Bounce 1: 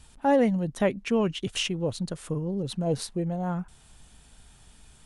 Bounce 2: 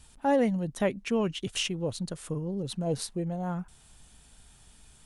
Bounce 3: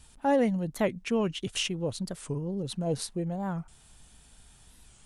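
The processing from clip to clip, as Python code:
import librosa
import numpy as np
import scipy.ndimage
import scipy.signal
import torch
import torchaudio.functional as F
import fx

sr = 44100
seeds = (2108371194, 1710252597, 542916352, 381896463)

y1 = fx.high_shelf(x, sr, hz=5200.0, db=4.5)
y1 = y1 * librosa.db_to_amplitude(-3.0)
y2 = fx.record_warp(y1, sr, rpm=45.0, depth_cents=160.0)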